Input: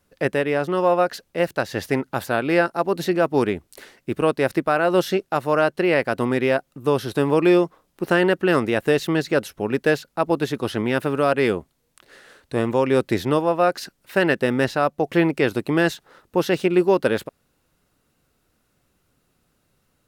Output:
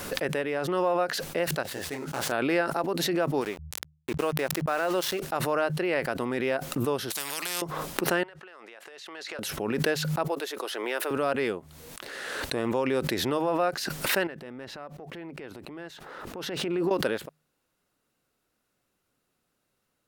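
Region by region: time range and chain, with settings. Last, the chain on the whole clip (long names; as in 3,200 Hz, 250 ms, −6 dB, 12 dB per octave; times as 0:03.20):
0:01.63–0:02.32: gap after every zero crossing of 0.08 ms + parametric band 7,100 Hz +3 dB 1.6 octaves + micro pitch shift up and down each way 48 cents
0:03.41–0:05.20: low-shelf EQ 270 Hz −6 dB + centre clipping without the shift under −30.5 dBFS
0:07.10–0:07.62: spectral tilt +3.5 dB per octave + every bin compressed towards the loudest bin 4 to 1
0:08.23–0:09.39: high-pass filter 670 Hz + downward compressor 20 to 1, threshold −35 dBFS + high-frequency loss of the air 58 metres
0:10.24–0:11.11: high-pass filter 380 Hz 24 dB per octave + high-shelf EQ 11,000 Hz +5 dB
0:14.27–0:16.91: high-shelf EQ 4,000 Hz −10.5 dB + downward compressor 5 to 1, threshold −28 dBFS + transient designer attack −6 dB, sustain +2 dB
whole clip: low-shelf EQ 160 Hz −10.5 dB; hum removal 76.83 Hz, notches 2; background raised ahead of every attack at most 25 dB per second; level −7.5 dB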